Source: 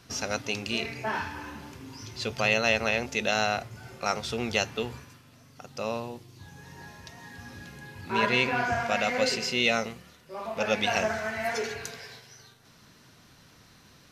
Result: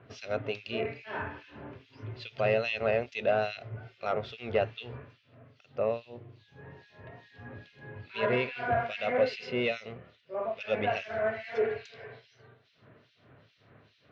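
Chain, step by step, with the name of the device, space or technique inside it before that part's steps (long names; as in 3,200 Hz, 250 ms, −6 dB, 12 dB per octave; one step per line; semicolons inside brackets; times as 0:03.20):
guitar amplifier with harmonic tremolo (two-band tremolo in antiphase 2.4 Hz, depth 100%, crossover 2,400 Hz; soft clipping −21 dBFS, distortion −15 dB; loudspeaker in its box 83–3,500 Hz, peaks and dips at 110 Hz +8 dB, 190 Hz −4 dB, 430 Hz +7 dB, 620 Hz +9 dB, 880 Hz −4 dB)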